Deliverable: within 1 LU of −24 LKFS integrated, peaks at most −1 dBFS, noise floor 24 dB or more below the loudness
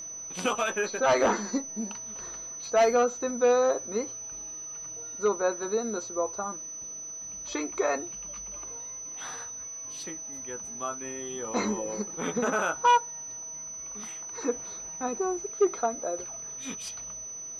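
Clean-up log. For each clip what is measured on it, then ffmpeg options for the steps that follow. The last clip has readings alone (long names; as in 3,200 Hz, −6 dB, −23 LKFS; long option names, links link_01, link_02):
interfering tone 6,000 Hz; level of the tone −37 dBFS; integrated loudness −30.0 LKFS; sample peak −15.0 dBFS; target loudness −24.0 LKFS
→ -af "bandreject=frequency=6000:width=30"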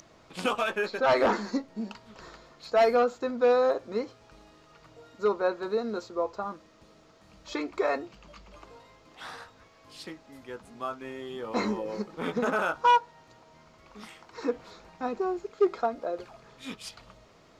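interfering tone none found; integrated loudness −29.0 LKFS; sample peak −16.0 dBFS; target loudness −24.0 LKFS
→ -af "volume=5dB"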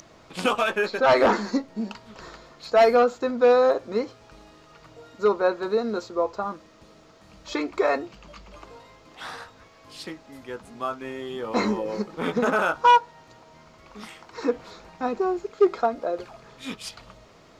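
integrated loudness −24.0 LKFS; sample peak −11.0 dBFS; background noise floor −53 dBFS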